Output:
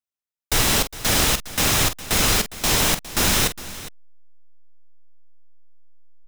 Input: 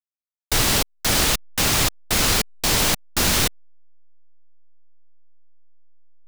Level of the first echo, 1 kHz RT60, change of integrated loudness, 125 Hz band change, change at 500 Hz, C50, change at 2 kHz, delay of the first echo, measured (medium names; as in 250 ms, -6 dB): -11.0 dB, no reverb, 0.0 dB, +0.5 dB, +0.5 dB, no reverb, +0.5 dB, 45 ms